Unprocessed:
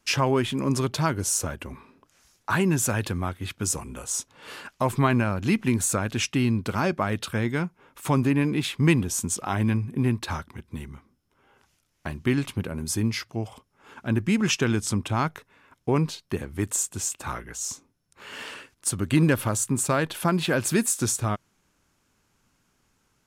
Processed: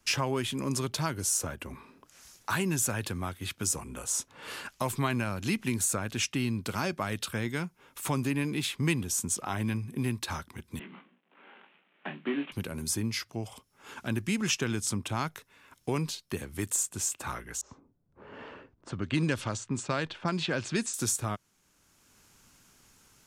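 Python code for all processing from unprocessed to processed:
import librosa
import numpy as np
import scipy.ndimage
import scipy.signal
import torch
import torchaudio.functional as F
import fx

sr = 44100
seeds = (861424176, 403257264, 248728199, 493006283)

y = fx.chain(x, sr, fx.cvsd(bps=16000),
    fx.cheby1_highpass(hz=160.0, order=8),
    fx.doubler(ms=21.0, db=-6), at=(10.79, 12.52))
y = fx.chain(y, sr, fx.lowpass(hz=7600.0, slope=24),
    fx.env_lowpass(base_hz=540.0, full_db=-17.5), at=(17.61, 20.94))
y = fx.high_shelf(y, sr, hz=3200.0, db=8.5)
y = fx.band_squash(y, sr, depth_pct=40)
y = F.gain(torch.from_numpy(y), -7.5).numpy()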